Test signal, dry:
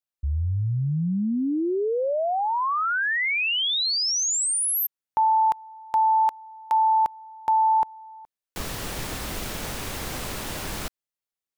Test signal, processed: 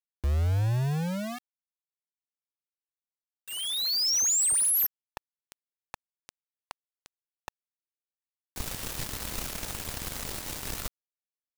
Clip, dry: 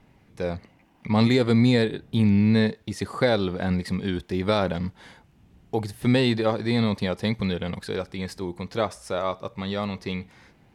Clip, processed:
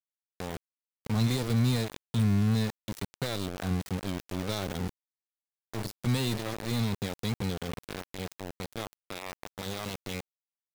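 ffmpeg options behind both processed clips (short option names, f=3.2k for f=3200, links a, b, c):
-filter_complex "[0:a]acrossover=split=150|4400[a][b][c];[b]acompressor=threshold=-40dB:ratio=3:attack=3.6:release=28:knee=2.83:detection=peak[d];[a][d][c]amix=inputs=3:normalize=0,aeval=exprs='val(0)*gte(abs(val(0)),0.0316)':c=same"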